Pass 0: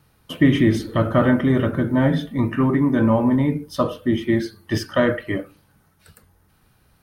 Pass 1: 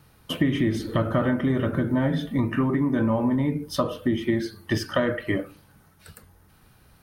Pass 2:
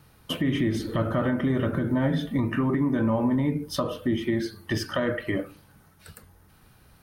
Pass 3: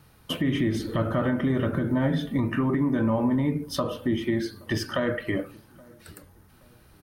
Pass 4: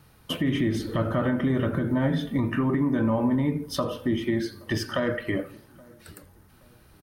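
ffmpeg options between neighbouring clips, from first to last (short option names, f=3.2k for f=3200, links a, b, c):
-af "acompressor=threshold=-24dB:ratio=4,volume=3dB"
-af "alimiter=limit=-15.5dB:level=0:latency=1:release=74"
-filter_complex "[0:a]asplit=2[a][b];[b]adelay=823,lowpass=f=830:p=1,volume=-24dB,asplit=2[c][d];[d]adelay=823,lowpass=f=830:p=1,volume=0.41,asplit=2[e][f];[f]adelay=823,lowpass=f=830:p=1,volume=0.41[g];[a][c][e][g]amix=inputs=4:normalize=0"
-af "aecho=1:1:84|168|252|336:0.0708|0.0375|0.0199|0.0105"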